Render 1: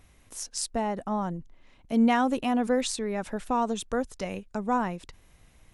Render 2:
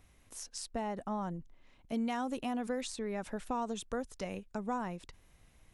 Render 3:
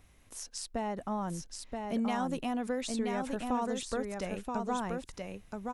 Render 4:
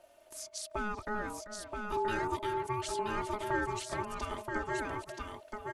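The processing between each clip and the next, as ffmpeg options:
-filter_complex "[0:a]acrossover=split=1400|4200[s0][s1][s2];[s0]acompressor=threshold=0.0447:ratio=4[s3];[s1]acompressor=threshold=0.00794:ratio=4[s4];[s2]acompressor=threshold=0.0126:ratio=4[s5];[s3][s4][s5]amix=inputs=3:normalize=0,volume=0.531"
-af "aecho=1:1:977:0.631,volume=1.26"
-filter_complex "[0:a]aecho=1:1:3.3:0.71,asplit=2[s0][s1];[s1]adelay=390,highpass=300,lowpass=3400,asoftclip=type=hard:threshold=0.0398,volume=0.282[s2];[s0][s2]amix=inputs=2:normalize=0,aeval=exprs='val(0)*sin(2*PI*630*n/s)':c=same"

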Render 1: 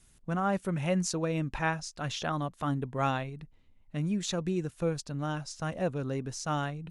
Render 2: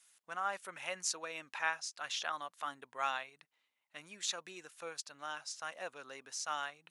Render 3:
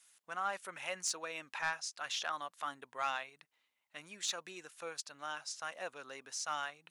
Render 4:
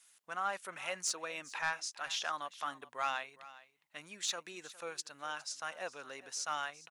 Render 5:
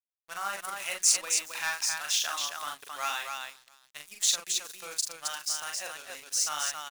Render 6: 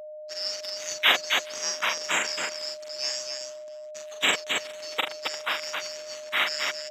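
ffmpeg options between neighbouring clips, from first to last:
-af "highpass=1100,volume=0.891"
-af "asoftclip=type=tanh:threshold=0.0531,volume=1.12"
-af "aecho=1:1:410:0.126,volume=1.12"
-af "aeval=exprs='sgn(val(0))*max(abs(val(0))-0.00266,0)':c=same,crystalizer=i=6:c=0,aecho=1:1:40.82|268.2:0.631|0.631,volume=0.75"
-af "afftfilt=real='real(if(lt(b,736),b+184*(1-2*mod(floor(b/184),2)),b),0)':imag='imag(if(lt(b,736),b+184*(1-2*mod(floor(b/184),2)),b),0)':win_size=2048:overlap=0.75,aeval=exprs='val(0)+0.00794*sin(2*PI*610*n/s)':c=same,highpass=310,lowpass=5500,volume=1.68"

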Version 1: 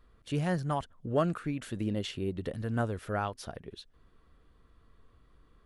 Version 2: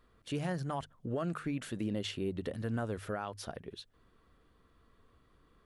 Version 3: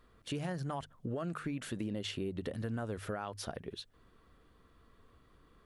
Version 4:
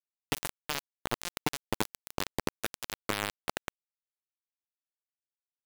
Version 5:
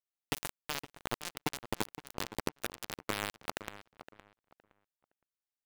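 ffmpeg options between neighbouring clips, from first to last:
-af "lowshelf=f=60:g=-9,bandreject=f=50:t=h:w=6,bandreject=f=100:t=h:w=6,bandreject=f=150:t=h:w=6,alimiter=level_in=1.33:limit=0.0631:level=0:latency=1:release=80,volume=0.75"
-af "acompressor=threshold=0.0141:ratio=4,volume=1.33"
-af "acrusher=bits=4:mix=0:aa=0.000001,volume=2.37"
-filter_complex "[0:a]asplit=2[s0][s1];[s1]adelay=515,lowpass=f=2500:p=1,volume=0.237,asplit=2[s2][s3];[s3]adelay=515,lowpass=f=2500:p=1,volume=0.24,asplit=2[s4][s5];[s5]adelay=515,lowpass=f=2500:p=1,volume=0.24[s6];[s0][s2][s4][s6]amix=inputs=4:normalize=0,volume=0.668"

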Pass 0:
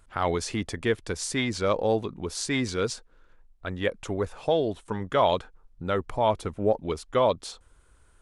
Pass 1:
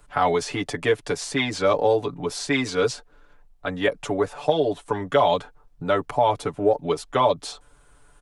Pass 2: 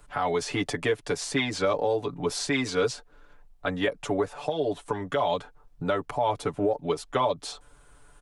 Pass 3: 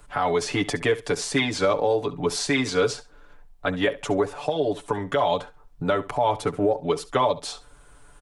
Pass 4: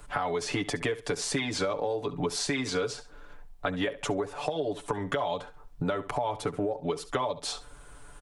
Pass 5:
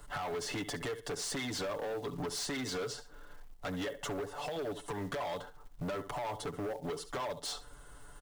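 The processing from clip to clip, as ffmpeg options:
-filter_complex "[0:a]equalizer=f=740:w=1.9:g=5,aecho=1:1:6.9:0.92,acrossover=split=89|290|4000[s0][s1][s2][s3];[s0]acompressor=threshold=0.00224:ratio=4[s4];[s1]acompressor=threshold=0.0178:ratio=4[s5];[s2]acompressor=threshold=0.112:ratio=4[s6];[s3]acompressor=threshold=0.0126:ratio=4[s7];[s4][s5][s6][s7]amix=inputs=4:normalize=0,volume=1.41"
-af "alimiter=limit=0.178:level=0:latency=1:release=383"
-af "aecho=1:1:68|136:0.141|0.0254,volume=1.5"
-af "acompressor=threshold=0.0355:ratio=6,volume=1.26"
-af "asuperstop=centerf=2400:order=8:qfactor=6.9,acrusher=bits=5:mode=log:mix=0:aa=0.000001,asoftclip=type=hard:threshold=0.0299,volume=0.668"

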